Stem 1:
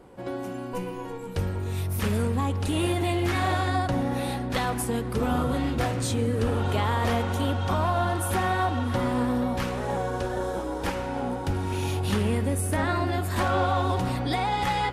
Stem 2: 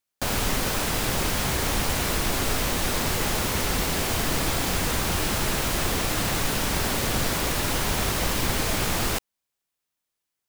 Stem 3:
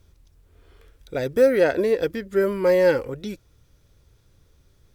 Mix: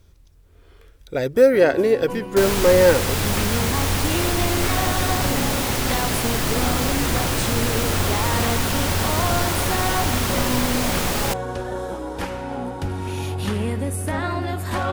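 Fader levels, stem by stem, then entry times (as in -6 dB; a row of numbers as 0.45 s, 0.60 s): +1.0 dB, +2.0 dB, +3.0 dB; 1.35 s, 2.15 s, 0.00 s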